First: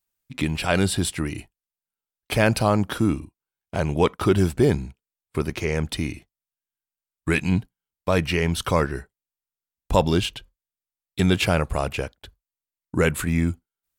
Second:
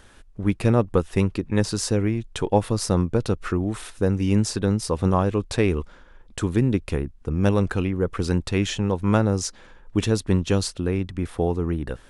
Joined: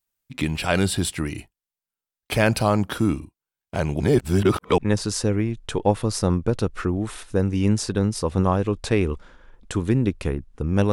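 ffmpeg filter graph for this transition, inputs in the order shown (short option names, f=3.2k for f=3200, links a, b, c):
-filter_complex "[0:a]apad=whole_dur=10.92,atrim=end=10.92,asplit=2[a][b];[a]atrim=end=4.002[c];[b]atrim=start=3.998:end=4.782,asetpts=PTS-STARTPTS,areverse[d];[1:a]atrim=start=1.448:end=7.59[e];[c][d]acrossfade=d=0.004:c1=hsin:c2=hsin[f];[f][e]acrossfade=d=0.004:c1=hsin:c2=hsin"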